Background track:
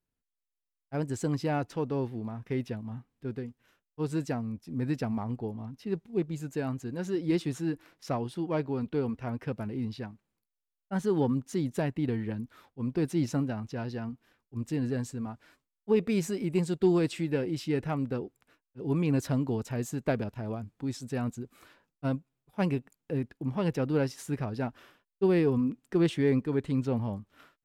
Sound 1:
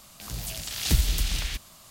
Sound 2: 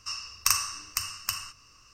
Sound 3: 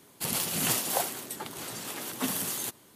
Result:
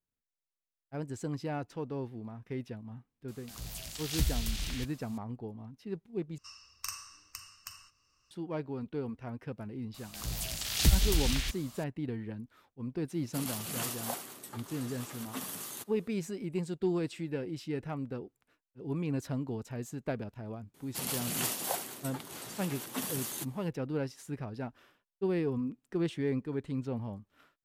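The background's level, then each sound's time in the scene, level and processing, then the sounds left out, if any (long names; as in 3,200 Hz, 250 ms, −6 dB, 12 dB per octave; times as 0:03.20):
background track −6.5 dB
0:03.28: mix in 1 −8 dB
0:06.38: overwrite with 2 −15.5 dB
0:09.94: mix in 1 −2 dB
0:13.13: mix in 3 −9 dB + parametric band 1,200 Hz +5 dB 0.24 octaves
0:20.74: mix in 3 −5.5 dB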